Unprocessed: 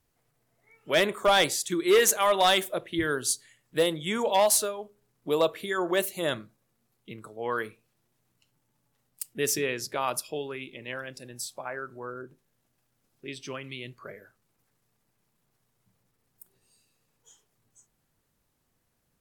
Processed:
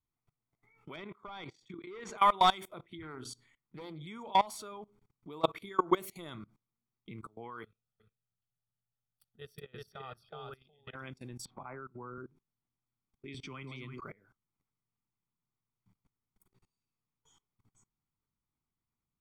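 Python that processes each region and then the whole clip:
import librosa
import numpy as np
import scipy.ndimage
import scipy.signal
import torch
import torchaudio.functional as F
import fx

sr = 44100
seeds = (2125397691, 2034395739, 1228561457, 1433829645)

y = fx.chain(x, sr, fx.air_absorb(metres=140.0),
    fx.level_steps(step_db=13), at=(0.96, 2.18))
y = fx.chain(y, sr, fx.high_shelf(hz=3100.0, db=-9.0),
    fx.hum_notches(base_hz=60, count=5),
    fx.doppler_dist(depth_ms=0.24), at=(3.02, 4.07))
y = fx.chain(y, sr, fx.transient(attack_db=9, sustain_db=1),
    fx.high_shelf(hz=8100.0, db=5.0), at=(5.44, 6.36))
y = fx.chain(y, sr, fx.level_steps(step_db=13),
    fx.fixed_phaser(hz=1500.0, stages=8),
    fx.echo_single(ms=368, db=-4.0), at=(7.63, 10.95))
y = fx.chain(y, sr, fx.spacing_loss(db_at_10k=31),
    fx.band_squash(depth_pct=70), at=(11.45, 12.18))
y = fx.chain(y, sr, fx.echo_alternate(ms=165, hz=1000.0, feedback_pct=50, wet_db=-5),
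    fx.band_squash(depth_pct=70), at=(13.34, 14.0))
y = fx.lowpass(y, sr, hz=2100.0, slope=6)
y = y + 0.67 * np.pad(y, (int(0.9 * sr / 1000.0), 0))[:len(y)]
y = fx.level_steps(y, sr, step_db=23)
y = y * 10.0 ** (1.0 / 20.0)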